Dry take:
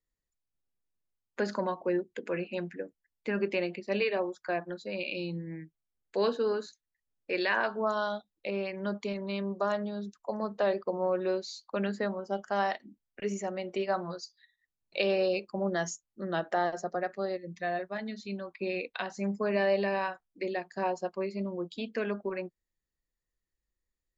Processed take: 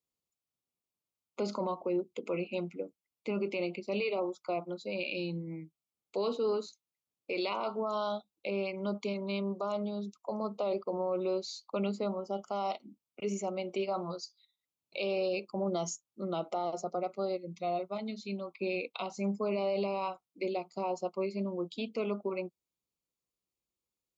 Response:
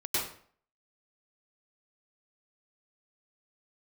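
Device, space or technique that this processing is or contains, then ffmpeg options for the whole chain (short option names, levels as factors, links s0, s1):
PA system with an anti-feedback notch: -af "highpass=120,asuperstop=centerf=1700:order=8:qfactor=2.3,alimiter=level_in=1.06:limit=0.0631:level=0:latency=1:release=12,volume=0.944"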